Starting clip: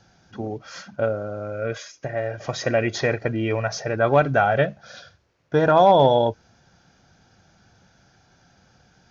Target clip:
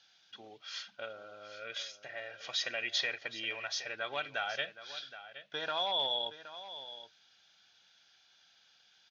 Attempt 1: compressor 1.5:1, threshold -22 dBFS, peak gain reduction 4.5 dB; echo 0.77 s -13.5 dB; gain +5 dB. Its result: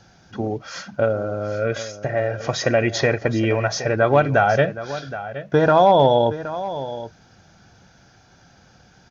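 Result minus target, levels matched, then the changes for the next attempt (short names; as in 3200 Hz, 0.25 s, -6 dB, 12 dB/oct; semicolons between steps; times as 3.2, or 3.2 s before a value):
4000 Hz band -14.5 dB
add after compressor: band-pass 3400 Hz, Q 3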